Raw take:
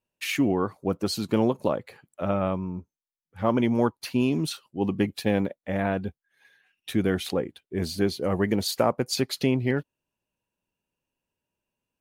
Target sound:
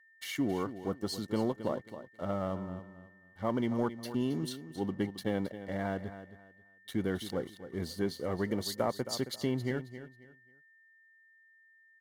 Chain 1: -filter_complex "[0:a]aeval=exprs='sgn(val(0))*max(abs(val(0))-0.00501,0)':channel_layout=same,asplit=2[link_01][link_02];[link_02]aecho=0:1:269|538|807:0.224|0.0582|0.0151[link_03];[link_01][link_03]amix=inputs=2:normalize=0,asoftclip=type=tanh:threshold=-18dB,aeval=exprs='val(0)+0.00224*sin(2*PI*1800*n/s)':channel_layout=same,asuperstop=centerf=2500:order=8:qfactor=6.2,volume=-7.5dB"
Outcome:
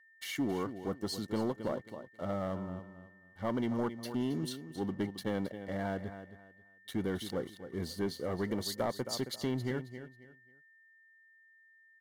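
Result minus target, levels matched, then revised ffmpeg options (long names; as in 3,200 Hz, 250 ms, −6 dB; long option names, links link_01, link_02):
soft clipping: distortion +10 dB
-filter_complex "[0:a]aeval=exprs='sgn(val(0))*max(abs(val(0))-0.00501,0)':channel_layout=same,asplit=2[link_01][link_02];[link_02]aecho=0:1:269|538|807:0.224|0.0582|0.0151[link_03];[link_01][link_03]amix=inputs=2:normalize=0,asoftclip=type=tanh:threshold=-10.5dB,aeval=exprs='val(0)+0.00224*sin(2*PI*1800*n/s)':channel_layout=same,asuperstop=centerf=2500:order=8:qfactor=6.2,volume=-7.5dB"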